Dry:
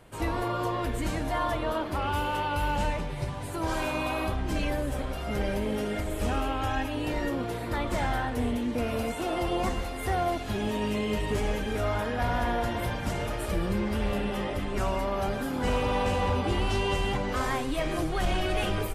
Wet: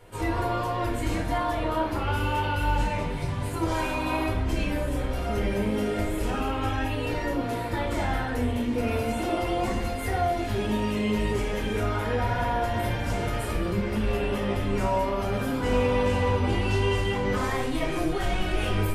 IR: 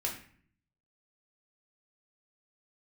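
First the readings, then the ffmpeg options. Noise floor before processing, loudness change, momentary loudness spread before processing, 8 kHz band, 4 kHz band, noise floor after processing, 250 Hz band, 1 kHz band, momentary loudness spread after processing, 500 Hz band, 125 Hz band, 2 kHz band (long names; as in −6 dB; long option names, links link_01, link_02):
−34 dBFS, +2.5 dB, 4 LU, +0.5 dB, +0.5 dB, −30 dBFS, +2.5 dB, +1.5 dB, 4 LU, +2.5 dB, +4.0 dB, +2.0 dB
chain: -filter_complex "[0:a]alimiter=limit=-22.5dB:level=0:latency=1[link_01];[1:a]atrim=start_sample=2205[link_02];[link_01][link_02]afir=irnorm=-1:irlink=0"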